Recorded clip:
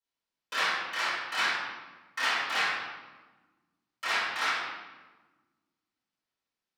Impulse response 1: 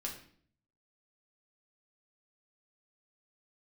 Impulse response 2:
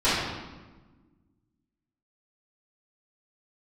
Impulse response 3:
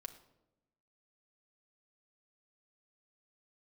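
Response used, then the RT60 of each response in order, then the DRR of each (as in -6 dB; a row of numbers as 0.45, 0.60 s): 2; 0.55, 1.3, 0.90 s; -1.5, -14.5, 5.0 dB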